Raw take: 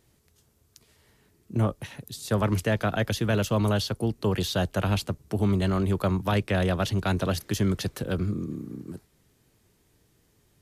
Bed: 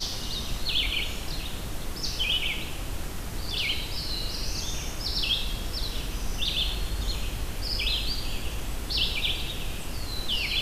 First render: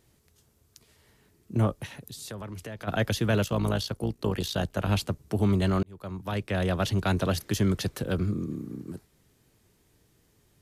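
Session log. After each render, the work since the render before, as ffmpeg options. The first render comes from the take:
-filter_complex "[0:a]asplit=3[s0][s1][s2];[s0]afade=t=out:st=1.92:d=0.02[s3];[s1]acompressor=threshold=0.0141:ratio=5:attack=3.2:release=140:knee=1:detection=peak,afade=t=in:st=1.92:d=0.02,afade=t=out:st=2.87:d=0.02[s4];[s2]afade=t=in:st=2.87:d=0.02[s5];[s3][s4][s5]amix=inputs=3:normalize=0,asettb=1/sr,asplit=3[s6][s7][s8];[s6]atrim=end=3.444[s9];[s7]atrim=start=3.44:end=4.89,asetpts=PTS-STARTPTS,afade=t=in:d=0.004:c=qsin,afade=t=out:st=1.446:d=0.004:c=qsin,tremolo=f=57:d=0.667[s10];[s8]atrim=start=4.886[s11];[s9][s10]acrossfade=d=0.004:c1=hsin:c2=qsin[s12];[s12][s11]acrossfade=d=0.004:c1=qsin:c2=hsin,asplit=2[s13][s14];[s13]atrim=end=5.83,asetpts=PTS-STARTPTS,afade=t=out:st=5.826:d=0.004:c=hsin[s15];[s14]atrim=start=5.83,asetpts=PTS-STARTPTS,afade=t=in:d=1.06[s16];[s15][s16]concat=n=2:v=0:a=1"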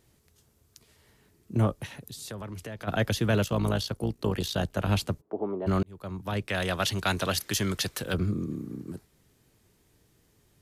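-filter_complex "[0:a]asplit=3[s0][s1][s2];[s0]afade=t=out:st=5.2:d=0.02[s3];[s1]asuperpass=centerf=570:order=4:qfactor=0.86,afade=t=in:st=5.2:d=0.02,afade=t=out:st=5.66:d=0.02[s4];[s2]afade=t=in:st=5.66:d=0.02[s5];[s3][s4][s5]amix=inputs=3:normalize=0,asettb=1/sr,asplit=3[s6][s7][s8];[s6]atrim=end=6.484[s9];[s7]atrim=start=6.48:end=8.14,asetpts=PTS-STARTPTS,afade=t=in:d=0.004:c=qsin,afade=t=out:st=1.656:d=0.004:c=qsin,tiltshelf=f=770:g=-6[s10];[s8]atrim=start=8.136[s11];[s9][s10]acrossfade=d=0.004:c1=hsin:c2=qsin[s12];[s12][s11]acrossfade=d=0.004:c1=qsin:c2=hsin"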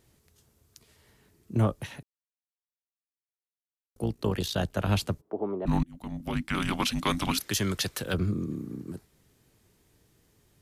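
-filter_complex "[0:a]asettb=1/sr,asplit=3[s0][s1][s2];[s0]atrim=end=5.654[s3];[s1]atrim=start=5.65:end=7.39,asetpts=PTS-STARTPTS,afade=t=in:d=0.004:c=qsin,afade=t=out:st=1.736:d=0.004:c=qsin,afreqshift=-350[s4];[s2]atrim=start=7.386[s5];[s3][s4]acrossfade=d=0.004:c1=hsin:c2=qsin[s6];[s6][s5]acrossfade=d=0.004:c1=qsin:c2=hsin,asplit=3[s7][s8][s9];[s7]atrim=end=2.03,asetpts=PTS-STARTPTS,afade=t=out:st=2.026:d=0.004:c=hsin[s10];[s8]atrim=start=2.03:end=3.96,asetpts=PTS-STARTPTS,volume=0[s11];[s9]atrim=start=3.96,asetpts=PTS-STARTPTS,afade=t=in:d=0.004:c=hsin[s12];[s10][s11][s12]concat=n=3:v=0:a=1"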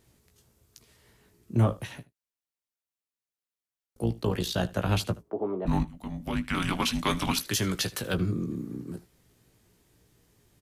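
-filter_complex "[0:a]asplit=2[s0][s1];[s1]adelay=17,volume=0.398[s2];[s0][s2]amix=inputs=2:normalize=0,aecho=1:1:77:0.1"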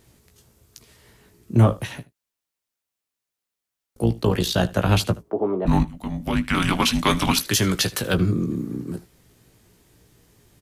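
-af "volume=2.37"

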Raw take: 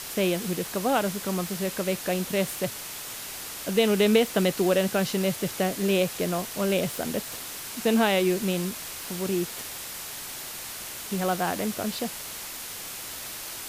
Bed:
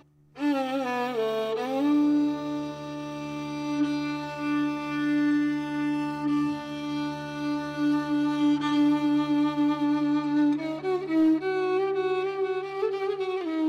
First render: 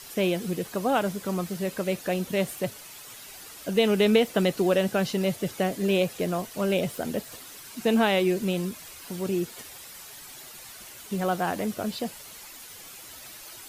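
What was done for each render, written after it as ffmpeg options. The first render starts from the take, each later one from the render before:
-af "afftdn=nr=10:nf=-38"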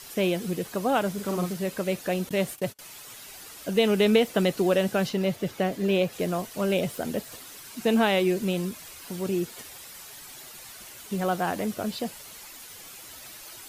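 -filter_complex "[0:a]asettb=1/sr,asplit=3[s0][s1][s2];[s0]atrim=end=1.134[s3];[s1]atrim=start=1.13:end=1.53,asetpts=PTS-STARTPTS,afade=t=in:d=0.004:c=qsin,afade=t=out:st=0.396:d=0.004:c=qsin,asplit=2[s4][s5];[s5]adelay=45,volume=0.631[s6];[s4][s6]amix=inputs=2:normalize=0,atrim=end_sample=17640[s7];[s2]atrim=start=1.526[s8];[s3][s7]acrossfade=d=0.004:c1=hsin:c2=qsin[s9];[s9][s8]acrossfade=d=0.004:c1=qsin:c2=hsin,asettb=1/sr,asplit=3[s10][s11][s12];[s10]atrim=end=2.294[s13];[s11]atrim=start=2.29:end=2.79,asetpts=PTS-STARTPTS,afade=t=in:d=0.004:c=qsin,afade=t=out:st=0.496:d=0.004:c=qsin,agate=range=0.0282:threshold=0.01:ratio=16:release=100:detection=peak[s14];[s12]atrim=start=2.786[s15];[s13][s14]acrossfade=d=0.004:c1=hsin:c2=qsin[s16];[s16][s15]acrossfade=d=0.004:c1=qsin:c2=hsin,asettb=1/sr,asplit=3[s17][s18][s19];[s17]atrim=end=5.094[s20];[s18]atrim=start=5.09:end=6.13,asetpts=PTS-STARTPTS,afade=t=in:d=0.004:c=qsin,afade=t=out:st=1.036:d=0.004:c=qsin,equalizer=f=9800:t=o:w=1.5:g=-7[s21];[s19]atrim=start=6.126[s22];[s20][s21]acrossfade=d=0.004:c1=hsin:c2=qsin[s23];[s23][s22]acrossfade=d=0.004:c1=qsin:c2=hsin"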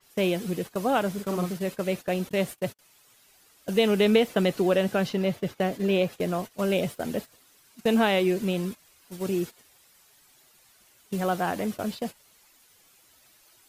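-af "agate=range=0.178:threshold=0.0224:ratio=16:detection=peak,adynamicequalizer=threshold=0.00501:dfrequency=4300:dqfactor=0.7:tfrequency=4300:tqfactor=0.7:attack=5:release=100:ratio=0.375:range=2.5:mode=cutabove:tftype=highshelf"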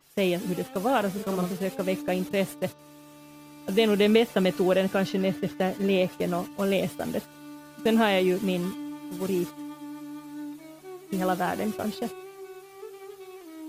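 -filter_complex "[1:a]volume=0.178[s0];[0:a][s0]amix=inputs=2:normalize=0"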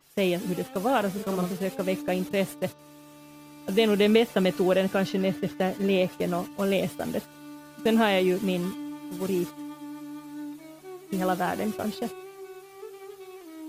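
-af anull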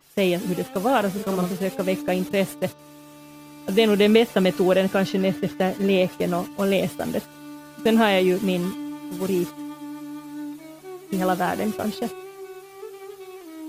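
-af "volume=1.58"

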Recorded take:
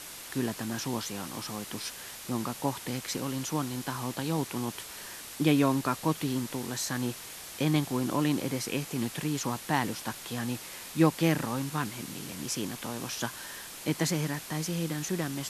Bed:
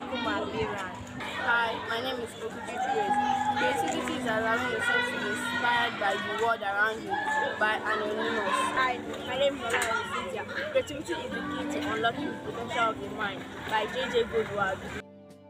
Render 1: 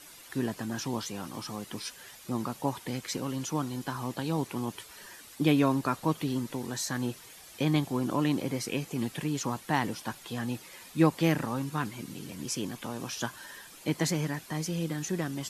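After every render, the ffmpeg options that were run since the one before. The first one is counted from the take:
-af "afftdn=nr=10:nf=-44"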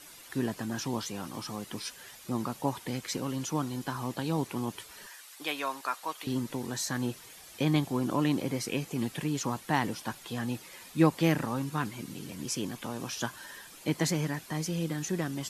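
-filter_complex "[0:a]asettb=1/sr,asplit=3[s0][s1][s2];[s0]atrim=end=5.074[s3];[s1]atrim=start=5.07:end=6.27,asetpts=PTS-STARTPTS,afade=t=in:d=0.004:c=qsin,afade=t=out:st=1.196:d=0.004:c=qsin,highpass=830[s4];[s2]atrim=start=6.266[s5];[s3][s4]acrossfade=d=0.004:c1=hsin:c2=qsin[s6];[s6][s5]acrossfade=d=0.004:c1=qsin:c2=hsin"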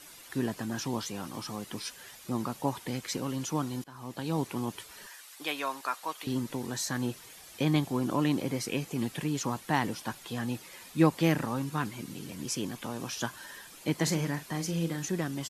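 -filter_complex "[0:a]asplit=3[s0][s1][s2];[s0]afade=t=out:st=14.06:d=0.02[s3];[s1]asplit=2[s4][s5];[s5]adelay=42,volume=0.299[s6];[s4][s6]amix=inputs=2:normalize=0,afade=t=in:st=14.06:d=0.02,afade=t=out:st=15.05:d=0.02[s7];[s2]afade=t=in:st=15.05:d=0.02[s8];[s3][s7][s8]amix=inputs=3:normalize=0,asplit=2[s9][s10];[s9]atrim=end=3.84,asetpts=PTS-STARTPTS,afade=t=out:st=3.836:d=0.004:c=hsin:silence=0.0707946[s11];[s10]atrim=start=3.84,asetpts=PTS-STARTPTS,afade=t=in:d=0.53:silence=0.0707946[s12];[s11][s12]concat=n=2:v=0:a=1"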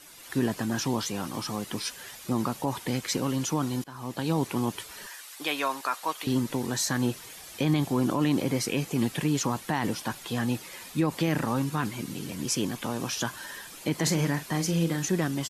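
-af "dynaudnorm=f=150:g=3:m=1.88,alimiter=limit=0.168:level=0:latency=1:release=35"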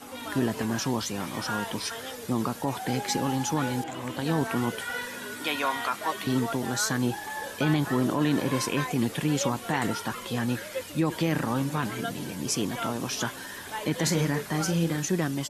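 -filter_complex "[1:a]volume=0.422[s0];[0:a][s0]amix=inputs=2:normalize=0"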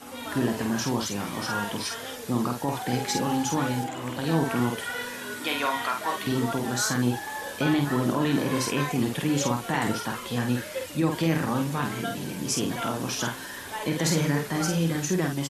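-filter_complex "[0:a]asplit=2[s0][s1];[s1]adelay=49,volume=0.596[s2];[s0][s2]amix=inputs=2:normalize=0"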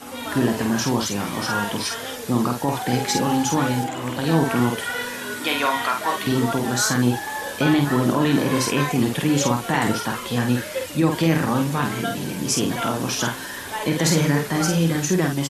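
-af "volume=1.88"

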